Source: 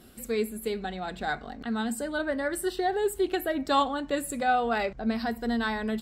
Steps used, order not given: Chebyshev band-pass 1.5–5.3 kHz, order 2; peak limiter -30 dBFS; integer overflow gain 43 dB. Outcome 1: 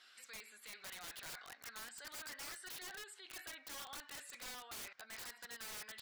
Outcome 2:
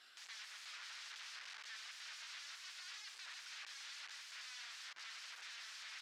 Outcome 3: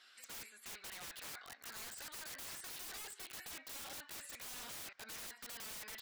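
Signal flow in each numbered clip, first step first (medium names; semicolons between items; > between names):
peak limiter > Chebyshev band-pass > integer overflow; peak limiter > integer overflow > Chebyshev band-pass; Chebyshev band-pass > peak limiter > integer overflow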